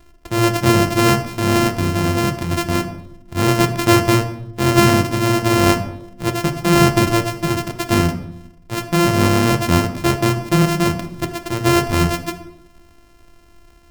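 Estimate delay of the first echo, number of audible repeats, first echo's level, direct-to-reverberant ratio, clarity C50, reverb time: no echo, no echo, no echo, 7.0 dB, 10.5 dB, 0.75 s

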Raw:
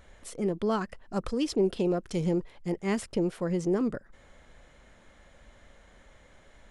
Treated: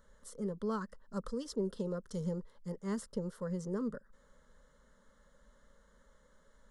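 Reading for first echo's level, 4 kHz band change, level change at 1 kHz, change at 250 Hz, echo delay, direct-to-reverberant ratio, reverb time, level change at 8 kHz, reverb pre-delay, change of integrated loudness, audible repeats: no echo, -12.0 dB, -9.5 dB, -9.0 dB, no echo, no reverb, no reverb, -7.5 dB, no reverb, -9.0 dB, no echo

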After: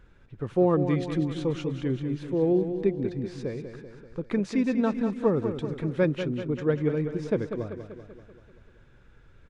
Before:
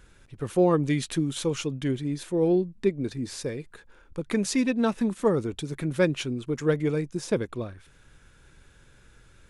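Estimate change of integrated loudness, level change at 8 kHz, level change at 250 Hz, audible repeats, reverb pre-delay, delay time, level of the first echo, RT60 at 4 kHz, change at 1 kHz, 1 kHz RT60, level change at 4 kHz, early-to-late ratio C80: -0.5 dB, under -15 dB, 0.0 dB, 6, no reverb, 193 ms, -9.0 dB, no reverb, -1.5 dB, no reverb, -8.5 dB, no reverb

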